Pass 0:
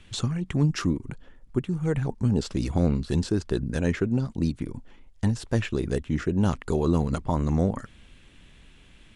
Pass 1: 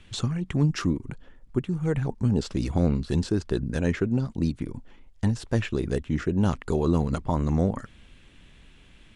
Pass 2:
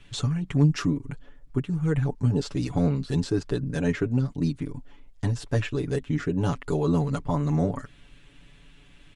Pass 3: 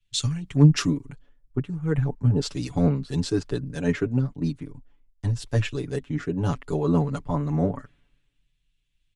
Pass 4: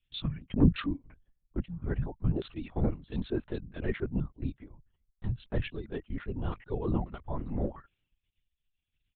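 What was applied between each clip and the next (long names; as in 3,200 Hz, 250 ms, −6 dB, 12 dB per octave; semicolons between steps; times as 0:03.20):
high-shelf EQ 8,500 Hz −4.5 dB
comb filter 7 ms, depth 88%; level −2.5 dB
multiband upward and downward expander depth 100%
reverb reduction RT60 0.79 s; linear-prediction vocoder at 8 kHz whisper; level −7 dB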